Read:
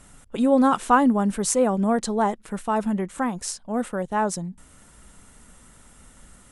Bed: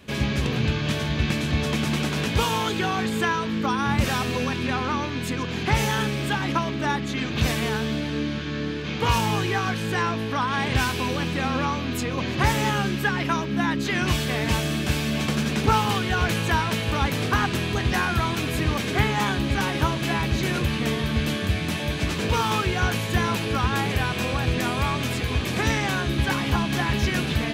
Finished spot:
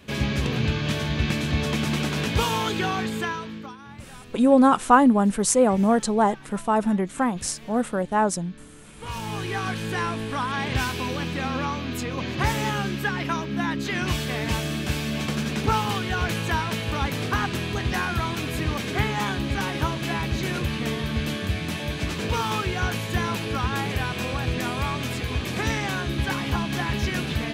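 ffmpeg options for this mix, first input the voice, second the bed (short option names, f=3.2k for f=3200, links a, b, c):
-filter_complex "[0:a]adelay=4000,volume=2dB[a];[1:a]volume=17dB,afade=t=out:st=2.88:d=0.89:silence=0.105925,afade=t=in:st=8.95:d=0.73:silence=0.133352[b];[a][b]amix=inputs=2:normalize=0"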